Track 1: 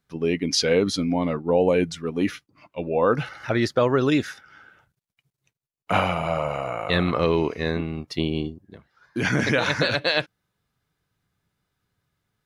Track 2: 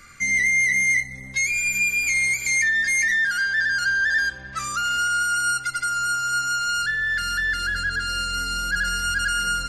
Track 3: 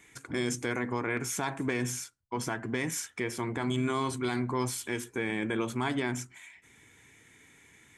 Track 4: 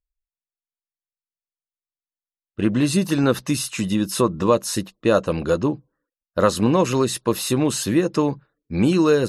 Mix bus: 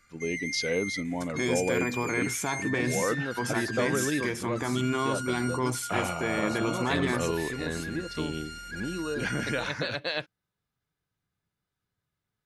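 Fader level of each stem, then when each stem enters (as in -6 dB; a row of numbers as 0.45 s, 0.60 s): -9.0 dB, -16.0 dB, +1.5 dB, -17.0 dB; 0.00 s, 0.00 s, 1.05 s, 0.00 s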